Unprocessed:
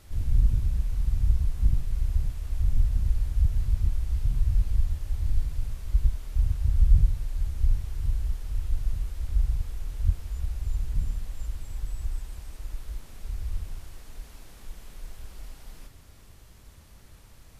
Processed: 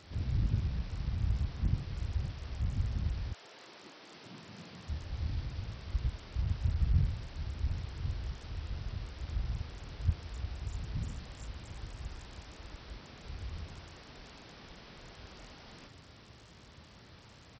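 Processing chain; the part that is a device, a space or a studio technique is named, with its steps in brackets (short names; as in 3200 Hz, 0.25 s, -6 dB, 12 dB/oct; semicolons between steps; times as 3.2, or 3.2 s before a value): 3.32–4.87 HPF 430 Hz -> 160 Hz 24 dB/oct; Bluetooth headset (HPF 110 Hz 12 dB/oct; downsampling 16000 Hz; gain +2.5 dB; SBC 64 kbps 44100 Hz)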